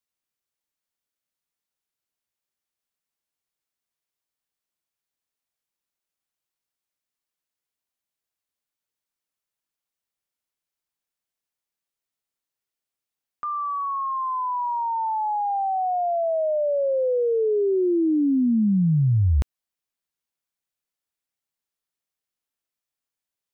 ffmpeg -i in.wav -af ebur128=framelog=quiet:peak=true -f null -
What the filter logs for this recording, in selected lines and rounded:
Integrated loudness:
  I:         -22.9 LUFS
  Threshold: -33.1 LUFS
Loudness range:
  LRA:        11.8 LU
  Threshold: -44.5 LUFS
  LRA low:   -33.2 LUFS
  LRA high:  -21.4 LUFS
True peak:
  Peak:      -14.8 dBFS